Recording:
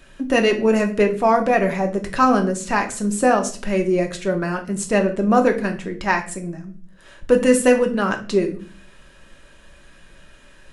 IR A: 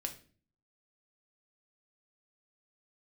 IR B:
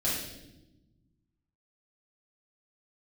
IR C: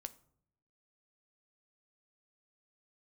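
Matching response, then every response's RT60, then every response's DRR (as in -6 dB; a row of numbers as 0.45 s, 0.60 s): A; 0.40 s, 1.0 s, 0.65 s; 3.5 dB, -8.5 dB, 10.0 dB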